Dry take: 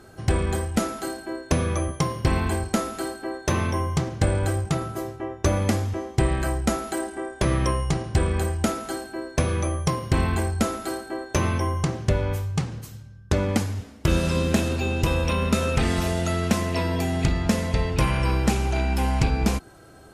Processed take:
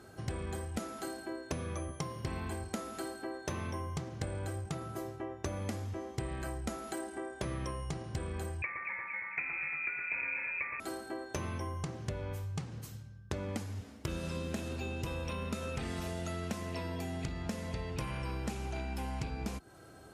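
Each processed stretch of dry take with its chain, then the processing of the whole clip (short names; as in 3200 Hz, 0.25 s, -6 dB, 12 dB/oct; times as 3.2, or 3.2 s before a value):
8.62–10.8 inverted band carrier 2500 Hz + echo with dull and thin repeats by turns 0.115 s, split 1900 Hz, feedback 75%, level -5 dB
whole clip: HPF 56 Hz; compressor 3:1, threshold -32 dBFS; gain -5.5 dB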